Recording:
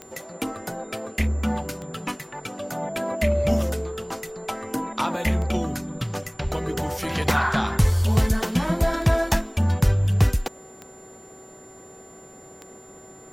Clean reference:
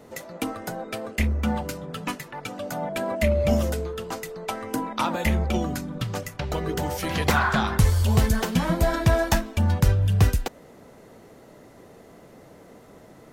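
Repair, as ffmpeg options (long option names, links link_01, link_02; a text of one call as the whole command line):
ffmpeg -i in.wav -filter_complex "[0:a]adeclick=threshold=4,bandreject=frequency=379.5:width_type=h:width=4,bandreject=frequency=759:width_type=h:width=4,bandreject=frequency=1138.5:width_type=h:width=4,bandreject=frequency=1518:width_type=h:width=4,bandreject=frequency=7200:width=30,asplit=3[link_01][link_02][link_03];[link_01]afade=type=out:start_time=6.43:duration=0.02[link_04];[link_02]highpass=frequency=140:width=0.5412,highpass=frequency=140:width=1.3066,afade=type=in:start_time=6.43:duration=0.02,afade=type=out:start_time=6.55:duration=0.02[link_05];[link_03]afade=type=in:start_time=6.55:duration=0.02[link_06];[link_04][link_05][link_06]amix=inputs=3:normalize=0" out.wav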